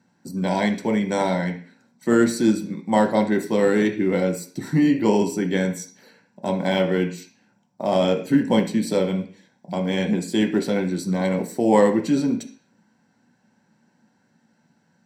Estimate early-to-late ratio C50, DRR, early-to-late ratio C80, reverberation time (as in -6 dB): 11.0 dB, 2.5 dB, 16.0 dB, 0.45 s